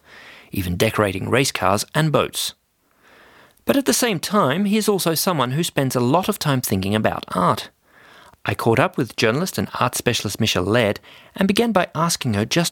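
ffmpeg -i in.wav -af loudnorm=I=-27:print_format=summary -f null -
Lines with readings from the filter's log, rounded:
Input Integrated:    -19.8 LUFS
Input True Peak:      -2.3 dBTP
Input LRA:             1.7 LU
Input Threshold:     -30.4 LUFS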